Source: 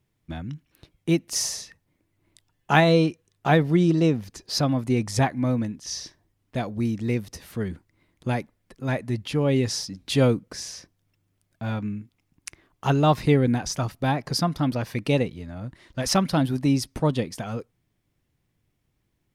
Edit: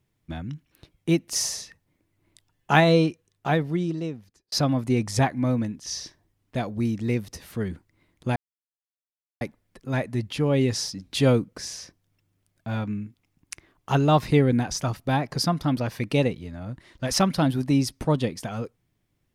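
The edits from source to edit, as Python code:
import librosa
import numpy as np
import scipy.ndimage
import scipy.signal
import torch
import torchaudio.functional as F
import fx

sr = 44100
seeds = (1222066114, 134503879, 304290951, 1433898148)

y = fx.edit(x, sr, fx.fade_out_span(start_s=2.96, length_s=1.56),
    fx.insert_silence(at_s=8.36, length_s=1.05), tone=tone)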